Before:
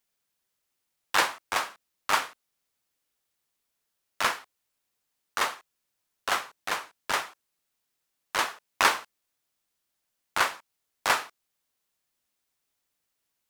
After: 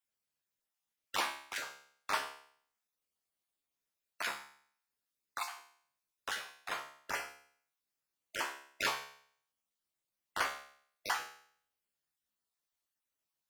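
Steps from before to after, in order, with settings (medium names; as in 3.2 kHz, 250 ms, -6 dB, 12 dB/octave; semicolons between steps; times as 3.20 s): random holes in the spectrogram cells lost 27%; feedback comb 70 Hz, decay 0.58 s, harmonics all, mix 80%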